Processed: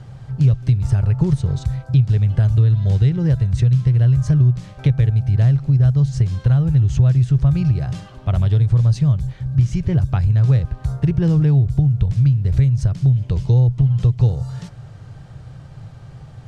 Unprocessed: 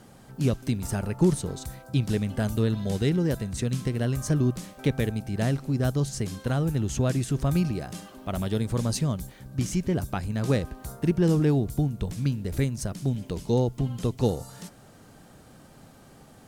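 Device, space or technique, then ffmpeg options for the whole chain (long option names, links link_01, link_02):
jukebox: -af "lowpass=5000,lowshelf=frequency=170:width_type=q:width=3:gain=10.5,acompressor=threshold=-18dB:ratio=3,volume=4.5dB"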